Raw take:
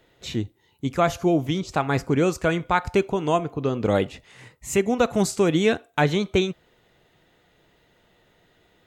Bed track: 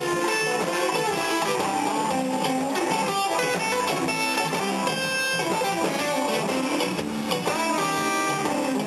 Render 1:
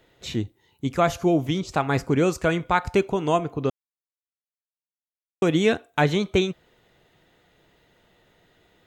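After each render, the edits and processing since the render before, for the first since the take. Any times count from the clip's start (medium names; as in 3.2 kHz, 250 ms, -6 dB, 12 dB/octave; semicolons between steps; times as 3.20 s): 3.70–5.42 s: mute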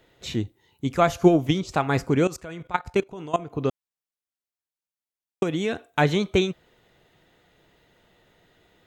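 0.98–1.69 s: transient shaper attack +8 dB, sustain -1 dB; 2.27–3.53 s: level held to a coarse grid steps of 18 dB; 5.43–5.86 s: compression 2:1, threshold -26 dBFS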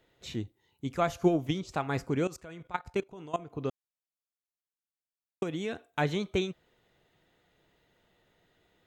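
trim -8.5 dB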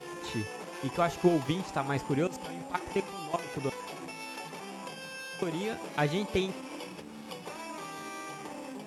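add bed track -17 dB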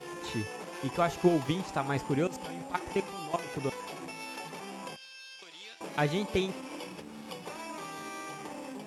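4.96–5.81 s: band-pass filter 4.1 kHz, Q 1.6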